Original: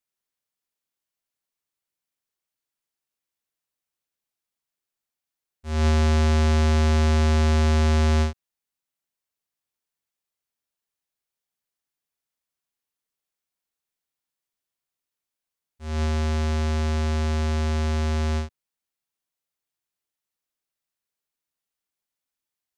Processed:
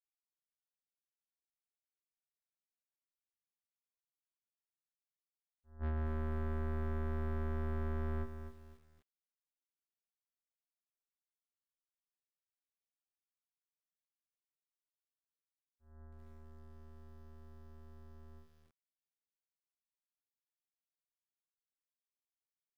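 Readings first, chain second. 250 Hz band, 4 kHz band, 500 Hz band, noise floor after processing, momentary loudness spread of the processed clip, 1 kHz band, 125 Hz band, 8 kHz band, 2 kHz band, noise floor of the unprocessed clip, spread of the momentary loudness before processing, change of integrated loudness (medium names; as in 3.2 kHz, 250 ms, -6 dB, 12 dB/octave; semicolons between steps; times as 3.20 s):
-19.0 dB, -36.5 dB, -17.5 dB, under -85 dBFS, 19 LU, -20.0 dB, no reading, under -35 dB, -21.5 dB, under -85 dBFS, 8 LU, -17.0 dB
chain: partial rectifier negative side -7 dB; steep low-pass 1.8 kHz 96 dB/octave; gate -20 dBFS, range -34 dB; bass shelf 120 Hz +3.5 dB; compression 6:1, threshold -31 dBFS, peak gain reduction 8.5 dB; saturation -36 dBFS, distortion -12 dB; doubling 16 ms -7 dB; bit-crushed delay 252 ms, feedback 35%, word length 11-bit, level -9 dB; trim +2 dB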